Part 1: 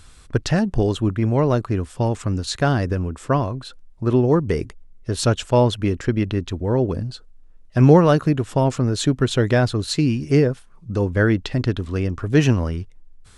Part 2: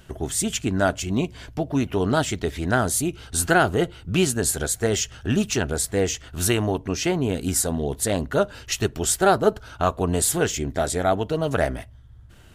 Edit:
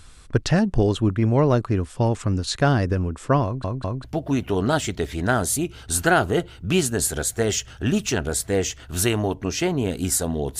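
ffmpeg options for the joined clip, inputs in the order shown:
ffmpeg -i cue0.wav -i cue1.wav -filter_complex "[0:a]apad=whole_dur=10.59,atrim=end=10.59,asplit=3[link_01][link_02][link_03];[link_01]atrim=end=3.642[link_04];[link_02]atrim=start=3.438:end=3.642[link_05];[link_03]atrim=start=3.438:end=3.642[link_06];[1:a]atrim=start=1.478:end=8.03[link_07];[link_04][link_05]acrossfade=duration=0.004:curve1=hsin:curve2=hsin[link_08];[link_08][link_06]acrossfade=duration=0.004:curve1=hsin:curve2=hsin[link_09];[link_09][link_07]acrossfade=duration=0.004:curve1=hsin:curve2=hsin" out.wav

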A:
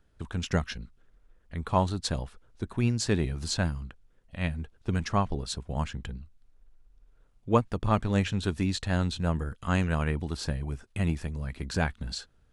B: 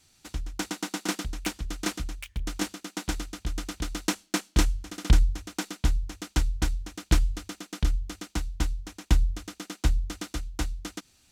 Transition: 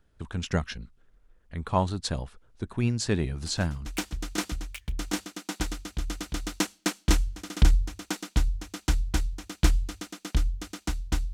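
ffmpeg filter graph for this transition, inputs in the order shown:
ffmpeg -i cue0.wav -i cue1.wav -filter_complex "[1:a]asplit=2[link_01][link_02];[0:a]apad=whole_dur=11.33,atrim=end=11.33,atrim=end=3.862[link_03];[link_02]atrim=start=1.338:end=8.81[link_04];[link_01]atrim=start=0.94:end=1.34,asetpts=PTS-STARTPTS,volume=-18dB,afade=type=in:duration=0.004:curve=hsin,afade=type=out:start_time=0.396:duration=0.004:curve=hsin,adelay=3460[link_05];[link_03][link_04]acrossfade=duration=0.004:curve1=hsin:curve2=hsin[link_06];[link_06][link_05]amix=inputs=2:normalize=0" out.wav

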